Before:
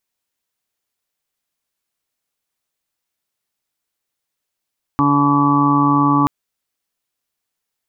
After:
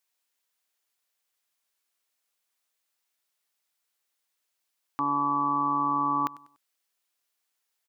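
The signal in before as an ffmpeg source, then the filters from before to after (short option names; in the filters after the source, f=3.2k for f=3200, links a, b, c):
-f lavfi -i "aevalsrc='0.1*sin(2*PI*143*t)+0.188*sin(2*PI*286*t)+0.02*sin(2*PI*429*t)+0.0141*sin(2*PI*572*t)+0.015*sin(2*PI*715*t)+0.0891*sin(2*PI*858*t)+0.0708*sin(2*PI*1001*t)+0.158*sin(2*PI*1144*t)':d=1.28:s=44100"
-af "alimiter=limit=-15.5dB:level=0:latency=1:release=105,highpass=f=700:p=1,aecho=1:1:97|194|291:0.0944|0.0349|0.0129"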